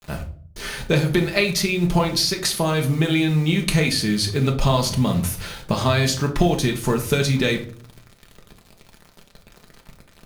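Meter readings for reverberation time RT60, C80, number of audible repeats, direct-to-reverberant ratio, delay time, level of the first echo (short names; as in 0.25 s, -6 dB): 0.50 s, 16.0 dB, none, 1.5 dB, none, none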